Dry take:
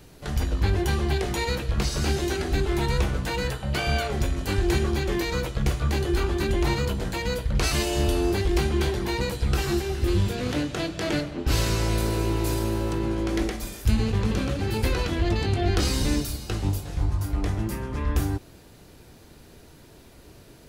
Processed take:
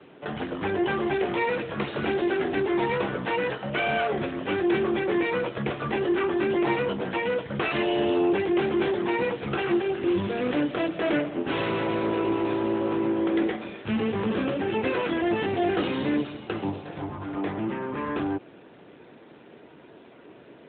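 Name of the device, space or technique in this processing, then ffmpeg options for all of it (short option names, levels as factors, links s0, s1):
telephone: -af "highpass=250,lowpass=3300,asoftclip=type=tanh:threshold=0.0944,volume=1.88" -ar 8000 -c:a libopencore_amrnb -b:a 12200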